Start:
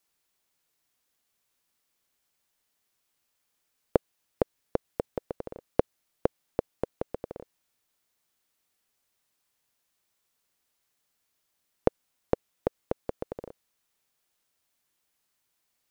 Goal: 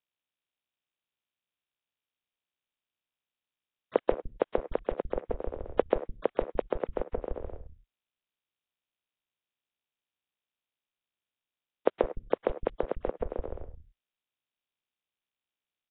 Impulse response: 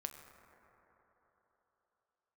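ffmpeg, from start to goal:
-filter_complex "[0:a]agate=range=0.0224:threshold=0.00447:ratio=3:detection=peak,asubboost=boost=7:cutoff=58,acrossover=split=200|940[s0][s1][s2];[s0]asoftclip=type=hard:threshold=0.0473[s3];[s3][s1][s2]amix=inputs=3:normalize=0,acrossover=split=160[s4][s5];[s4]adelay=160[s6];[s6][s5]amix=inputs=2:normalize=0,asplit=2[s7][s8];[1:a]atrim=start_sample=2205,afade=t=out:st=0.16:d=0.01,atrim=end_sample=7497,adelay=135[s9];[s8][s9]afir=irnorm=-1:irlink=0,volume=1.33[s10];[s7][s10]amix=inputs=2:normalize=0" -ar 8000 -c:a nellymoser

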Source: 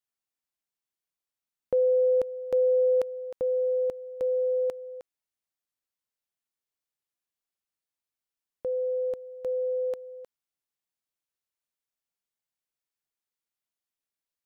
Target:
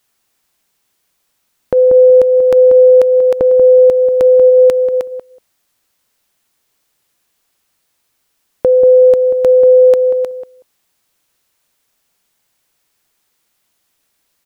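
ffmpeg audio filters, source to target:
-filter_complex "[0:a]asplit=3[s0][s1][s2];[s0]afade=t=out:st=4.49:d=0.02[s3];[s1]equalizer=f=690:w=1.2:g=-7.5,afade=t=in:st=4.49:d=0.02,afade=t=out:st=4.92:d=0.02[s4];[s2]afade=t=in:st=4.92:d=0.02[s5];[s3][s4][s5]amix=inputs=3:normalize=0,acompressor=threshold=0.0251:ratio=12,asplit=2[s6][s7];[s7]adelay=187,lowpass=f=900:p=1,volume=0.398,asplit=2[s8][s9];[s9]adelay=187,lowpass=f=900:p=1,volume=0.15[s10];[s6][s8][s10]amix=inputs=3:normalize=0,alimiter=level_in=21.1:limit=0.891:release=50:level=0:latency=1,volume=0.891"

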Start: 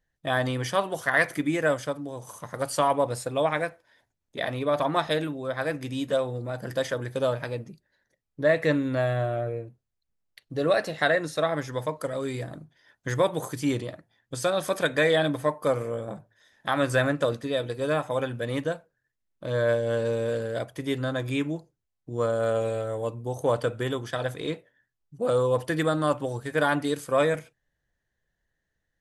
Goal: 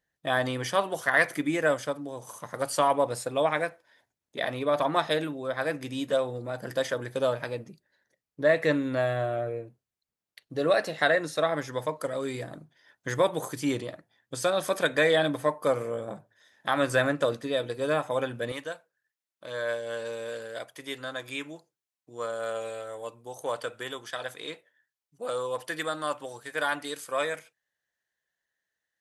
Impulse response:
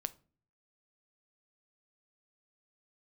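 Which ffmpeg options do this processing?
-af "asetnsamples=n=441:p=0,asendcmd='18.52 highpass f 1200',highpass=f=210:p=1"

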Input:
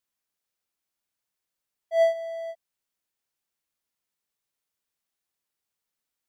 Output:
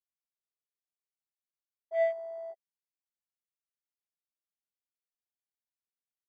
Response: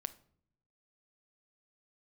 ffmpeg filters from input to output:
-af "afwtdn=0.0141,aecho=1:1:5:0.53,volume=0.473"

